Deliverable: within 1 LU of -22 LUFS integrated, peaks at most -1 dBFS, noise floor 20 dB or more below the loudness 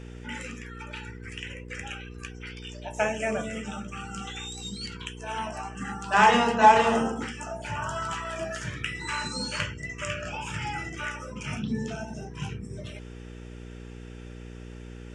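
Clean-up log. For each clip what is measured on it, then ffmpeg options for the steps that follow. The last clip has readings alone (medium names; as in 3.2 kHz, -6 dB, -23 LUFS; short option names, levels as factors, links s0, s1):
hum 60 Hz; highest harmonic 480 Hz; hum level -39 dBFS; loudness -28.5 LUFS; peak level -5.0 dBFS; loudness target -22.0 LUFS
-> -af "bandreject=f=60:t=h:w=4,bandreject=f=120:t=h:w=4,bandreject=f=180:t=h:w=4,bandreject=f=240:t=h:w=4,bandreject=f=300:t=h:w=4,bandreject=f=360:t=h:w=4,bandreject=f=420:t=h:w=4,bandreject=f=480:t=h:w=4"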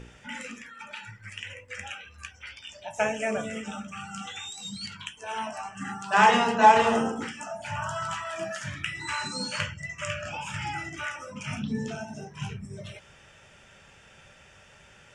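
hum not found; loudness -28.5 LUFS; peak level -4.5 dBFS; loudness target -22.0 LUFS
-> -af "volume=2.11,alimiter=limit=0.891:level=0:latency=1"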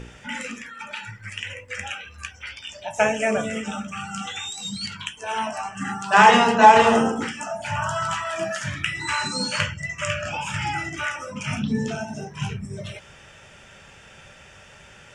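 loudness -22.5 LUFS; peak level -1.0 dBFS; noise floor -48 dBFS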